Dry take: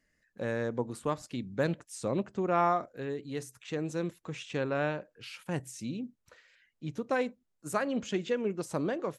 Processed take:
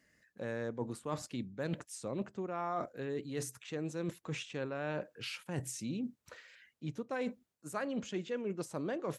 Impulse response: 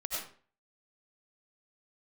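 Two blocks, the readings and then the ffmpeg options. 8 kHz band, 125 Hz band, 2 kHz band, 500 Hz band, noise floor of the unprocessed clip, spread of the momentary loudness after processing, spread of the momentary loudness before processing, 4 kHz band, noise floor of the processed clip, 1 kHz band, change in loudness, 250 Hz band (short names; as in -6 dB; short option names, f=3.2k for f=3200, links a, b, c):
-0.5 dB, -4.5 dB, -6.0 dB, -6.5 dB, -78 dBFS, 5 LU, 10 LU, -2.0 dB, -80 dBFS, -9.0 dB, -6.0 dB, -4.5 dB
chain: -af "highpass=71,areverse,acompressor=threshold=-40dB:ratio=6,areverse,volume=5dB"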